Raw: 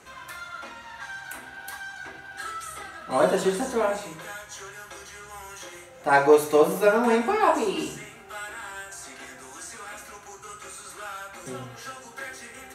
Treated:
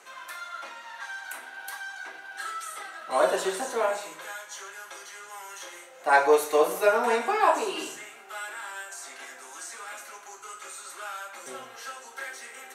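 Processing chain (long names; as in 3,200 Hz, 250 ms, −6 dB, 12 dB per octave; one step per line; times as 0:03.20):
high-pass filter 490 Hz 12 dB per octave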